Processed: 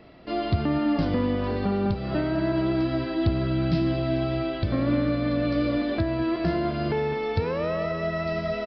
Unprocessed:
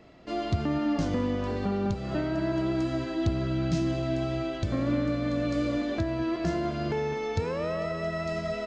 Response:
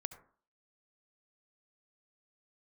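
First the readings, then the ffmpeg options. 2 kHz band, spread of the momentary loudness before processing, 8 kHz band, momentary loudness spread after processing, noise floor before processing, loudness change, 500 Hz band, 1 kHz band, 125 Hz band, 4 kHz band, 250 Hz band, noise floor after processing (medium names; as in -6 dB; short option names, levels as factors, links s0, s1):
+3.5 dB, 3 LU, no reading, 3 LU, -35 dBFS, +3.5 dB, +3.5 dB, +3.5 dB, +3.5 dB, +3.5 dB, +3.5 dB, -32 dBFS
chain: -af "aresample=11025,aresample=44100,volume=1.5"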